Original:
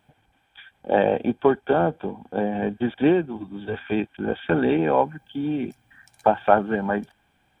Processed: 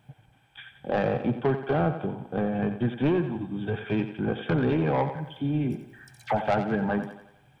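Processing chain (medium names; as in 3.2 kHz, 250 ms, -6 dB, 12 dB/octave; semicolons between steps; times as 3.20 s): peaking EQ 130 Hz +15 dB 0.68 oct; in parallel at -1 dB: compression, threshold -30 dBFS, peak gain reduction 19 dB; on the sum: saturation -12.5 dBFS, distortion -12 dB; 5.09–6.41 s: phase dispersion lows, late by 64 ms, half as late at 1.4 kHz; on a send: thinning echo 89 ms, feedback 51%, high-pass 220 Hz, level -9.5 dB; on the sum: trim -5 dB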